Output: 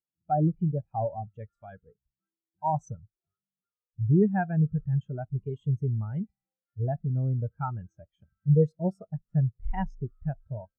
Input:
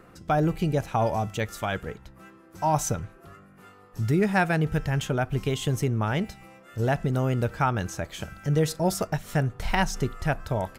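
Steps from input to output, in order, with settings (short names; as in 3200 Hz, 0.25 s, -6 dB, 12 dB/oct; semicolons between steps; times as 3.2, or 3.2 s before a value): spectral expander 2.5:1; gain -1.5 dB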